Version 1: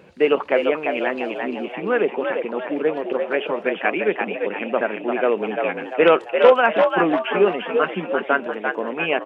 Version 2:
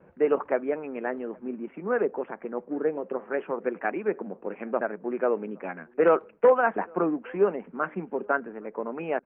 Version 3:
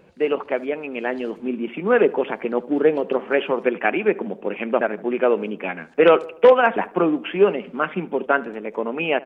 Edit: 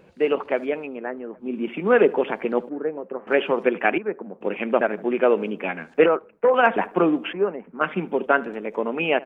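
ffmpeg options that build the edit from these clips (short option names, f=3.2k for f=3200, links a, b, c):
-filter_complex "[1:a]asplit=5[a][b][c][d][e];[2:a]asplit=6[f][g][h][i][j][k];[f]atrim=end=1.01[l];[a]atrim=start=0.77:end=1.62[m];[g]atrim=start=1.38:end=2.692[n];[b]atrim=start=2.688:end=3.272[o];[h]atrim=start=3.268:end=3.982[p];[c]atrim=start=3.978:end=4.412[q];[i]atrim=start=4.408:end=6.062[r];[d]atrim=start=6.058:end=6.542[s];[j]atrim=start=6.538:end=7.332[t];[e]atrim=start=7.328:end=7.812[u];[k]atrim=start=7.808[v];[l][m]acrossfade=d=0.24:c1=tri:c2=tri[w];[w][n]acrossfade=d=0.24:c1=tri:c2=tri[x];[x][o]acrossfade=d=0.004:c1=hsin:c2=hsin[y];[y][p]acrossfade=d=0.004:c1=hsin:c2=hsin[z];[z][q]acrossfade=d=0.004:c1=hsin:c2=hsin[aa];[aa][r]acrossfade=d=0.004:c1=hsin:c2=hsin[ab];[ab][s]acrossfade=d=0.004:c1=hsin:c2=hsin[ac];[ac][t]acrossfade=d=0.004:c1=hsin:c2=hsin[ad];[ad][u]acrossfade=d=0.004:c1=hsin:c2=hsin[ae];[ae][v]acrossfade=d=0.004:c1=hsin:c2=hsin"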